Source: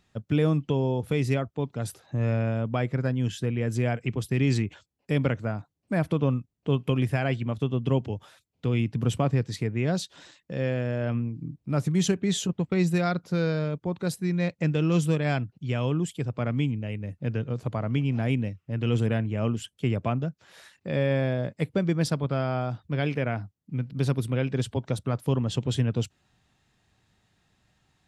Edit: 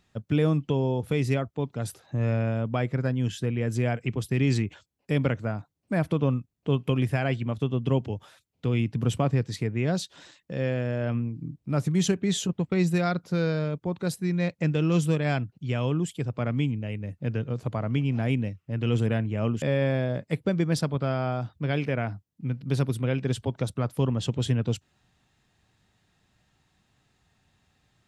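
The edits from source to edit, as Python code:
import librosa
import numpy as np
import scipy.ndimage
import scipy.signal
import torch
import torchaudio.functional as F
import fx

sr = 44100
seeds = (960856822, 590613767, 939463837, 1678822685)

y = fx.edit(x, sr, fx.cut(start_s=19.62, length_s=1.29), tone=tone)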